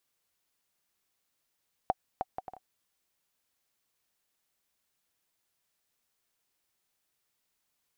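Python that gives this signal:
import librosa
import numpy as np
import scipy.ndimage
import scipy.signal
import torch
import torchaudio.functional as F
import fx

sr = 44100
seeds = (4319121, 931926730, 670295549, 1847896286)

y = fx.bouncing_ball(sr, first_gap_s=0.31, ratio=0.56, hz=753.0, decay_ms=35.0, level_db=-14.0)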